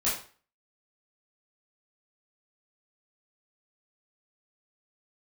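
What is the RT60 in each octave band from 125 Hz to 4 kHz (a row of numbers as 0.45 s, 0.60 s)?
0.45 s, 0.40 s, 0.40 s, 0.40 s, 0.40 s, 0.35 s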